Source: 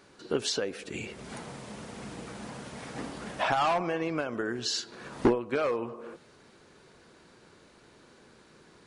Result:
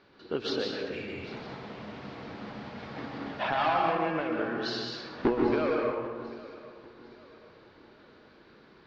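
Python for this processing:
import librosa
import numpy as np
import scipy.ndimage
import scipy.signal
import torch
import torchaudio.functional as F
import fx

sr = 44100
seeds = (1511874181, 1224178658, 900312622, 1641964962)

p1 = scipy.signal.sosfilt(scipy.signal.butter(6, 4700.0, 'lowpass', fs=sr, output='sos'), x)
p2 = fx.hum_notches(p1, sr, base_hz=60, count=3)
p3 = p2 + fx.echo_feedback(p2, sr, ms=794, feedback_pct=38, wet_db=-18.5, dry=0)
p4 = fx.rev_plate(p3, sr, seeds[0], rt60_s=1.4, hf_ratio=0.55, predelay_ms=115, drr_db=-1.0)
y = F.gain(torch.from_numpy(p4), -3.0).numpy()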